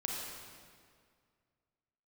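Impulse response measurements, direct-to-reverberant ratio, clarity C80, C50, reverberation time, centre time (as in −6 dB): −2.0 dB, 1.0 dB, −0.5 dB, 2.0 s, 107 ms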